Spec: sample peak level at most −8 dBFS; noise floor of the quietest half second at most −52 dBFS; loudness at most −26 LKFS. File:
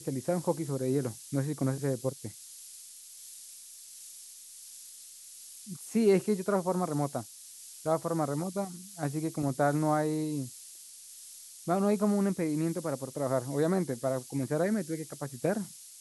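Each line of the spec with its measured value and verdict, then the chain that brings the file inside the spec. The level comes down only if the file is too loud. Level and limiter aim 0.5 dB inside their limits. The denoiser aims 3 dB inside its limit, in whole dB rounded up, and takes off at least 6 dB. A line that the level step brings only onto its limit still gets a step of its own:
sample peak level −13.5 dBFS: in spec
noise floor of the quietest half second −49 dBFS: out of spec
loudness −31.0 LKFS: in spec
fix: broadband denoise 6 dB, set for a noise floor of −49 dBFS

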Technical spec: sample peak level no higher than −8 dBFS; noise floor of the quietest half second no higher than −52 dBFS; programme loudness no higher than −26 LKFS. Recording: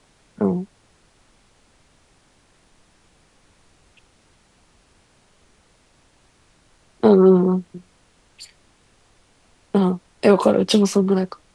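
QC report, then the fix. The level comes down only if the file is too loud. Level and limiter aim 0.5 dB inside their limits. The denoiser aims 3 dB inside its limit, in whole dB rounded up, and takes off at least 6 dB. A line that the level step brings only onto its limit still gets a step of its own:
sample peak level −2.0 dBFS: out of spec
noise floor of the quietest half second −58 dBFS: in spec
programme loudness −18.0 LKFS: out of spec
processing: level −8.5 dB

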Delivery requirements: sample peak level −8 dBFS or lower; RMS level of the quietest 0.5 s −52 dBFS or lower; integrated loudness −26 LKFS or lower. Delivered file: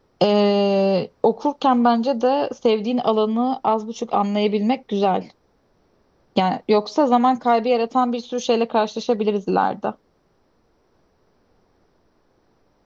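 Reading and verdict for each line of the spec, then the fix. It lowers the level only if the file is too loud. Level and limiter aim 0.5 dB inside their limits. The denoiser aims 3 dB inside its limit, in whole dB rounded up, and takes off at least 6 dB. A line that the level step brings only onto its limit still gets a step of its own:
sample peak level −4.0 dBFS: out of spec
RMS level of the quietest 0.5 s −63 dBFS: in spec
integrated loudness −20.0 LKFS: out of spec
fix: level −6.5 dB

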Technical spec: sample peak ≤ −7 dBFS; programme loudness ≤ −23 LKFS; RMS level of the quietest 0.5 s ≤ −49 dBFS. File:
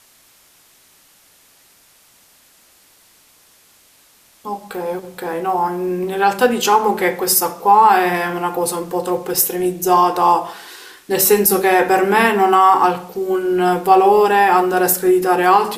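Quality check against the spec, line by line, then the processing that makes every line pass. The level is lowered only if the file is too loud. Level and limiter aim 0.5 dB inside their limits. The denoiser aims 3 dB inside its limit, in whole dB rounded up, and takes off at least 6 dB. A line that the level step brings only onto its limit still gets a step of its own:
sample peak −2.0 dBFS: out of spec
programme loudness −15.0 LKFS: out of spec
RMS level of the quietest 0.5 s −52 dBFS: in spec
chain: level −8.5 dB

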